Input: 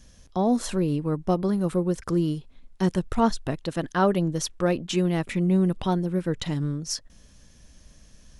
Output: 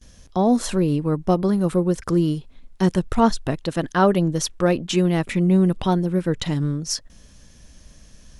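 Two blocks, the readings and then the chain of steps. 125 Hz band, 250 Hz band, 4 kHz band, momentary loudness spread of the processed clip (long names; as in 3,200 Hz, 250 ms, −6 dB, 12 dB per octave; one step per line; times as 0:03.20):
+4.5 dB, +4.5 dB, +4.5 dB, 7 LU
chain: noise gate with hold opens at −46 dBFS
level +4.5 dB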